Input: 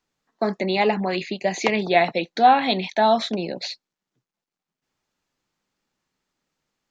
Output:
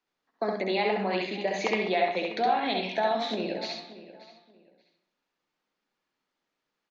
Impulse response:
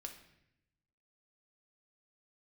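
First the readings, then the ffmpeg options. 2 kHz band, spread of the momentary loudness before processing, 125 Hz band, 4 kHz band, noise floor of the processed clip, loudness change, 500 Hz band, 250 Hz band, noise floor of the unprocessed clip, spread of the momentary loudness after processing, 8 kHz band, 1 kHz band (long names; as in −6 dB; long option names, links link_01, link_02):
−5.5 dB, 12 LU, −8.5 dB, −5.5 dB, −84 dBFS, −7.0 dB, −5.5 dB, −7.5 dB, below −85 dBFS, 8 LU, can't be measured, −8.5 dB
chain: -filter_complex "[0:a]acrossover=split=230 5300:gain=0.251 1 0.178[link_01][link_02][link_03];[link_01][link_02][link_03]amix=inputs=3:normalize=0,acompressor=threshold=-20dB:ratio=6,asplit=2[link_04][link_05];[link_05]adelay=582,lowpass=frequency=3600:poles=1,volume=-16dB,asplit=2[link_06][link_07];[link_07]adelay=582,lowpass=frequency=3600:poles=1,volume=0.25[link_08];[link_04][link_06][link_08]amix=inputs=3:normalize=0,asplit=2[link_09][link_10];[1:a]atrim=start_sample=2205,adelay=66[link_11];[link_10][link_11]afir=irnorm=-1:irlink=0,volume=3dB[link_12];[link_09][link_12]amix=inputs=2:normalize=0,volume=-4.5dB"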